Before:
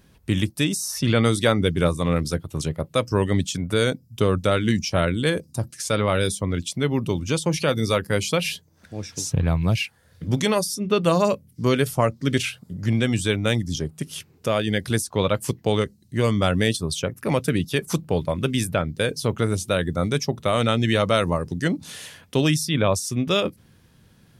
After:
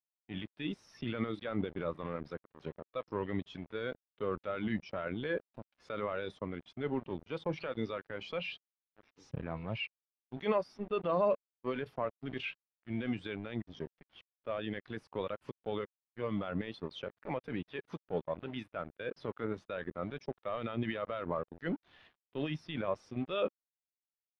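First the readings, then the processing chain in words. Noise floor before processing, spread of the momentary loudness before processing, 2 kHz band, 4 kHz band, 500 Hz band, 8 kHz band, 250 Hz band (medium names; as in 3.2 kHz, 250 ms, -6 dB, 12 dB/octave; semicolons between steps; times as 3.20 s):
-57 dBFS, 8 LU, -15.5 dB, -20.0 dB, -13.5 dB, under -40 dB, -15.5 dB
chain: high-pass 730 Hz 6 dB/octave; treble shelf 6 kHz +6 dB; transient shaper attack -8 dB, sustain +2 dB; peak limiter -18 dBFS, peak gain reduction 10.5 dB; small samples zeroed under -34 dBFS; distance through air 340 m; spectral contrast expander 1.5:1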